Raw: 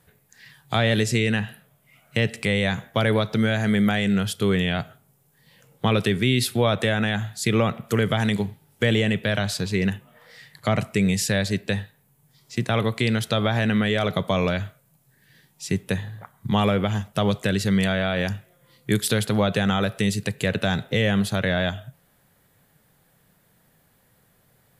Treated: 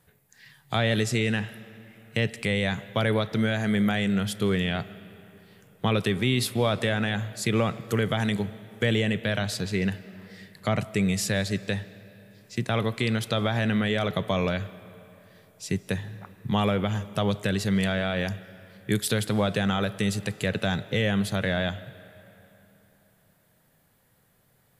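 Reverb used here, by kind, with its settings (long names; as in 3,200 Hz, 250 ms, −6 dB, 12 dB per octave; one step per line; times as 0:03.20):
comb and all-pass reverb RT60 3.4 s, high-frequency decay 0.7×, pre-delay 115 ms, DRR 18 dB
level −3.5 dB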